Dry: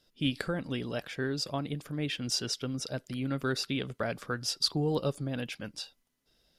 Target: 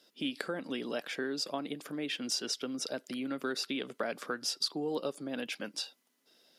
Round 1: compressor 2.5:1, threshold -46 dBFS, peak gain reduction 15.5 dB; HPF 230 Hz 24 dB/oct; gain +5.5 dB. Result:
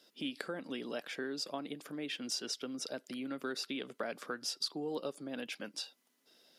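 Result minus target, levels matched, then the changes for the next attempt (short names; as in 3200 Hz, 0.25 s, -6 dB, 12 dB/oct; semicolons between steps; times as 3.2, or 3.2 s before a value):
compressor: peak gain reduction +4 dB
change: compressor 2.5:1, threshold -39.5 dBFS, peak gain reduction 11.5 dB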